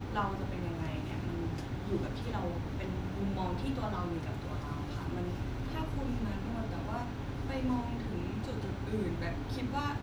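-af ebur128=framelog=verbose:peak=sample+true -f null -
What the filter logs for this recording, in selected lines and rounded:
Integrated loudness:
  I:         -36.8 LUFS
  Threshold: -46.8 LUFS
Loudness range:
  LRA:         1.0 LU
  Threshold: -56.9 LUFS
  LRA low:   -37.5 LUFS
  LRA high:  -36.5 LUFS
Sample peak:
  Peak:      -20.6 dBFS
True peak:
  Peak:      -20.6 dBFS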